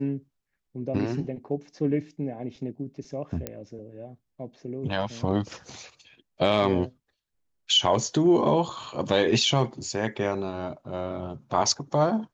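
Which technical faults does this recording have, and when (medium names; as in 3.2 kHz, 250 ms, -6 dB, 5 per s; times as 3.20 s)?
3.47 s: pop -15 dBFS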